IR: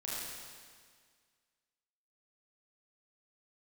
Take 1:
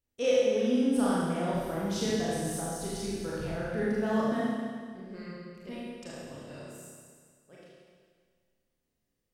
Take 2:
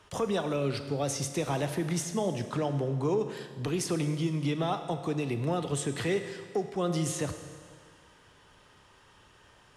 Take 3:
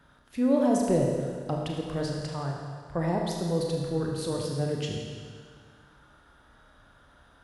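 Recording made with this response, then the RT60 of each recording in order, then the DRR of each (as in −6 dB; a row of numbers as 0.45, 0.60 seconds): 1; 1.8, 1.8, 1.8 seconds; −7.5, 8.0, −0.5 decibels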